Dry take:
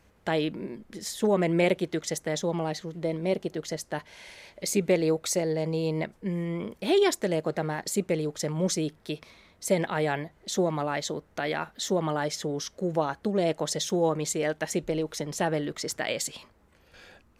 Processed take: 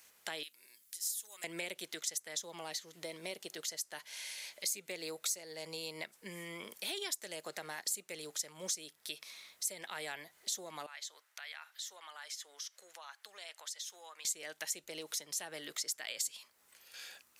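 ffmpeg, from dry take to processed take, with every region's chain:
-filter_complex "[0:a]asettb=1/sr,asplit=3[s0][s1][s2];[s0]atrim=end=0.434[s3];[s1]atrim=start=0.43:end=1.44,asetpts=PTS-STARTPTS,afade=t=in:d=0.004:c=qsin,afade=t=out:st=1.006:d=0.004:c=qsin,aderivative,aeval=exprs='val(0)+0.000224*(sin(2*PI*60*n/s)+sin(2*PI*2*60*n/s)/2+sin(2*PI*3*60*n/s)/3+sin(2*PI*4*60*n/s)/4+sin(2*PI*5*60*n/s)/5)':c=same[s4];[s2]atrim=start=1.436[s5];[s3][s4]acrossfade=d=0.004:c1=hsin:c2=qsin[s6];[s6][s5]acrossfade=d=0.004:c1=qsin:c2=hsin,asettb=1/sr,asplit=3[s7][s8][s9];[s7]atrim=end=10.864[s10];[s8]atrim=start=10.86:end=14.25,asetpts=PTS-STARTPTS,afade=t=in:d=0.004:c=qsin,afade=t=out:st=3.386:d=0.004:c=qsin,highpass=1200,acompressor=threshold=0.00398:ratio=2:attack=3.2:release=140:knee=1:detection=peak,highshelf=f=4000:g=-9[s11];[s9]atrim=start=14.246[s12];[s10][s11]acrossfade=d=0.004:c1=hsin:c2=qsin[s13];[s13][s12]acrossfade=d=0.004:c1=qsin:c2=hsin,acrossover=split=430[s14][s15];[s15]acompressor=threshold=0.0501:ratio=6[s16];[s14][s16]amix=inputs=2:normalize=0,aderivative,acompressor=threshold=0.00224:ratio=2.5,volume=3.76"

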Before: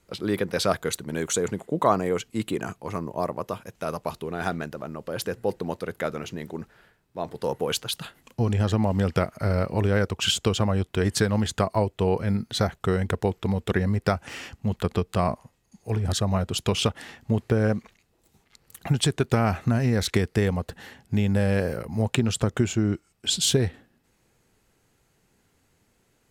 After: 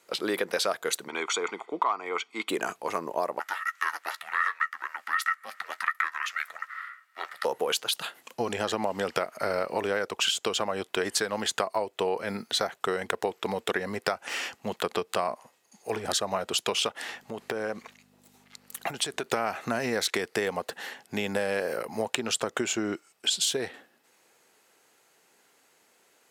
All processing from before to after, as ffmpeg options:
-filter_complex "[0:a]asettb=1/sr,asplit=3[s0][s1][s2];[s0]atrim=end=1.084[s3];[s1]atrim=start=1.08:end=2.49,asetpts=PTS-STARTPTS,afade=t=in:d=0.004:c=qsin,afade=t=out:st=1.406:d=0.004:c=qsin,aecho=1:1:0.9:0.75,atrim=end_sample=62181,asoftclip=type=hard:threshold=0.299,highpass=430,lowpass=3400[s4];[s2]atrim=start=2.486[s5];[s3][s4]acrossfade=d=0.004:c1=hsin:c2=qsin[s6];[s6][s5]acrossfade=d=0.004:c1=qsin:c2=hsin,asettb=1/sr,asplit=3[s7][s8][s9];[s7]atrim=end=3.394[s10];[s8]atrim=start=3.39:end=7.45,asetpts=PTS-STARTPTS,afade=t=in:d=0.004:c=qsin,afade=t=out:st=4.056:d=0.004:c=qsin,highpass=f=1600:t=q:w=14,aeval=exprs='val(0)*sin(2*PI*280*n/s)':c=same,asplit=2[s11][s12];[s12]adelay=13,volume=0.237[s13];[s11][s13]amix=inputs=2:normalize=0,atrim=end_sample=179046[s14];[s9]atrim=start=7.446[s15];[s10][s14]acrossfade=d=0.004:c1=hsin:c2=qsin[s16];[s16][s15]acrossfade=d=0.004:c1=qsin:c2=hsin,asettb=1/sr,asplit=3[s17][s18][s19];[s17]atrim=end=17.084[s20];[s18]atrim=start=17.08:end=19.26,asetpts=PTS-STARTPTS,afade=t=in:d=0.004:c=qsin,afade=t=out:st=2.176:d=0.004:c=qsin,acompressor=threshold=0.0501:ratio=6:attack=3.2:release=140:knee=1:detection=peak,aeval=exprs='val(0)+0.00562*(sin(2*PI*50*n/s)+sin(2*PI*2*50*n/s)/2+sin(2*PI*3*50*n/s)/3+sin(2*PI*4*50*n/s)/4+sin(2*PI*5*50*n/s)/5)':c=same[s21];[s19]atrim=start=19.256[s22];[s20][s21]acrossfade=d=0.004:c1=hsin:c2=qsin[s23];[s23][s22]acrossfade=d=0.004:c1=qsin:c2=hsin,highpass=480,acompressor=threshold=0.0316:ratio=6,volume=2"

